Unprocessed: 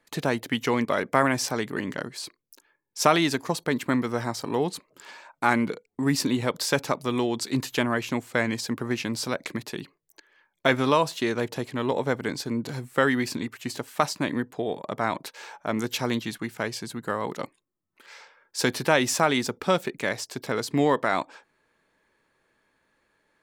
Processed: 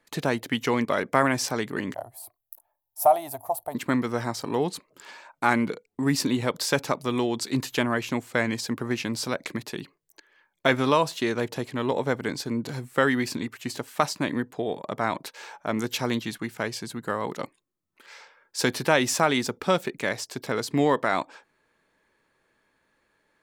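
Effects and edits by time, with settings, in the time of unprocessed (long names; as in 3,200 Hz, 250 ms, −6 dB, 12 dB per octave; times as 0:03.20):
0:01.94–0:03.75: drawn EQ curve 110 Hz 0 dB, 180 Hz −29 dB, 260 Hz −18 dB, 470 Hz −16 dB, 690 Hz +11 dB, 1,000 Hz −5 dB, 1,600 Hz −21 dB, 4,400 Hz −20 dB, 6,500 Hz −17 dB, 12,000 Hz +11 dB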